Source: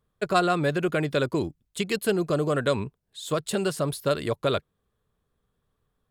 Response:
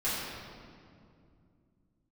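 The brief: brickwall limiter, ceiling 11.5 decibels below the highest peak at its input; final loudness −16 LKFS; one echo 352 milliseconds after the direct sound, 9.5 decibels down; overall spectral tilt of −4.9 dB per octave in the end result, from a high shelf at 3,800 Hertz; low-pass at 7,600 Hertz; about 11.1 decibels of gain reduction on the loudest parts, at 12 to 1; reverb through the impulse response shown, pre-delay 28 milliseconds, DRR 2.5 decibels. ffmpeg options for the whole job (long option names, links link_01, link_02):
-filter_complex "[0:a]lowpass=7600,highshelf=frequency=3800:gain=4.5,acompressor=threshold=-29dB:ratio=12,alimiter=level_in=3dB:limit=-24dB:level=0:latency=1,volume=-3dB,aecho=1:1:352:0.335,asplit=2[link_01][link_02];[1:a]atrim=start_sample=2205,adelay=28[link_03];[link_02][link_03]afir=irnorm=-1:irlink=0,volume=-11.5dB[link_04];[link_01][link_04]amix=inputs=2:normalize=0,volume=19dB"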